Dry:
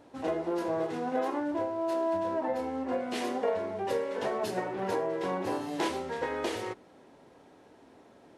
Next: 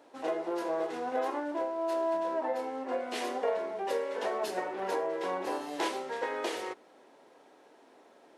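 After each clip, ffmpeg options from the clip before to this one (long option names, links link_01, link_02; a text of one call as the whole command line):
ffmpeg -i in.wav -af "highpass=370" out.wav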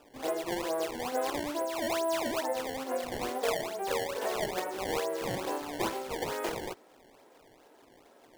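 ffmpeg -i in.wav -af "acrusher=samples=20:mix=1:aa=0.000001:lfo=1:lforange=32:lforate=2.3" out.wav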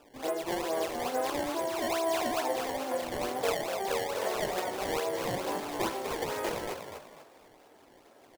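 ffmpeg -i in.wav -filter_complex "[0:a]asplit=5[link_01][link_02][link_03][link_04][link_05];[link_02]adelay=246,afreqshift=65,volume=-6.5dB[link_06];[link_03]adelay=492,afreqshift=130,volume=-15.9dB[link_07];[link_04]adelay=738,afreqshift=195,volume=-25.2dB[link_08];[link_05]adelay=984,afreqshift=260,volume=-34.6dB[link_09];[link_01][link_06][link_07][link_08][link_09]amix=inputs=5:normalize=0" out.wav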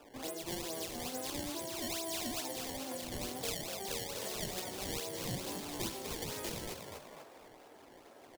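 ffmpeg -i in.wav -filter_complex "[0:a]acrossover=split=250|3000[link_01][link_02][link_03];[link_02]acompressor=threshold=-48dB:ratio=4[link_04];[link_01][link_04][link_03]amix=inputs=3:normalize=0,volume=1dB" out.wav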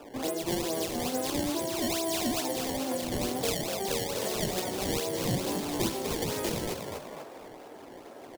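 ffmpeg -i in.wav -af "equalizer=frequency=300:width=0.34:gain=5.5,volume=6dB" out.wav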